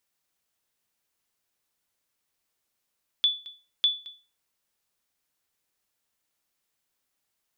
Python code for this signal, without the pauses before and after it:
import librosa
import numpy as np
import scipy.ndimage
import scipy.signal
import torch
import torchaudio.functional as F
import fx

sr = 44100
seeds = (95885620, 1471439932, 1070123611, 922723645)

y = fx.sonar_ping(sr, hz=3460.0, decay_s=0.33, every_s=0.6, pings=2, echo_s=0.22, echo_db=-20.5, level_db=-14.5)